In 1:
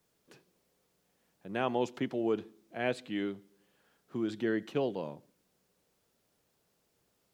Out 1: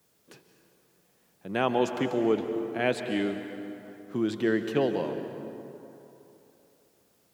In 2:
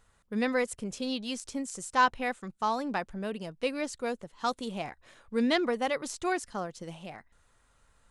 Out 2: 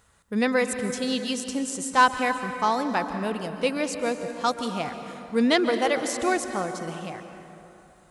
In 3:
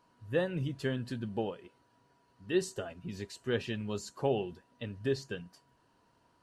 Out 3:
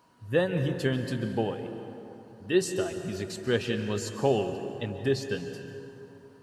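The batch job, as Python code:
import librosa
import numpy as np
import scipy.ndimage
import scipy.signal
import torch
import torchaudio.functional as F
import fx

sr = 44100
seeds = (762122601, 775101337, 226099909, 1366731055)

y = scipy.signal.sosfilt(scipy.signal.butter(2, 48.0, 'highpass', fs=sr, output='sos'), x)
y = fx.high_shelf(y, sr, hz=8400.0, db=5.0)
y = fx.rev_plate(y, sr, seeds[0], rt60_s=3.1, hf_ratio=0.55, predelay_ms=120, drr_db=7.5)
y = y * 10.0 ** (5.5 / 20.0)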